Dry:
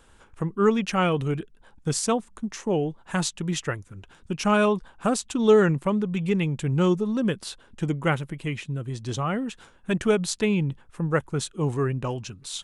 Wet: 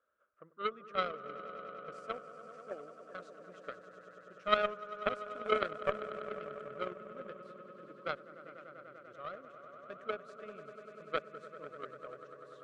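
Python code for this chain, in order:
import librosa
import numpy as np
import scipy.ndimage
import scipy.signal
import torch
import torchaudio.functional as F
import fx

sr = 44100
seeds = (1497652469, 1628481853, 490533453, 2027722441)

y = fx.double_bandpass(x, sr, hz=870.0, octaves=1.1)
y = fx.echo_swell(y, sr, ms=98, loudest=5, wet_db=-10)
y = fx.cheby_harmonics(y, sr, harmonics=(3,), levels_db=(-11,), full_scale_db=-15.0)
y = y * librosa.db_to_amplitude(3.0)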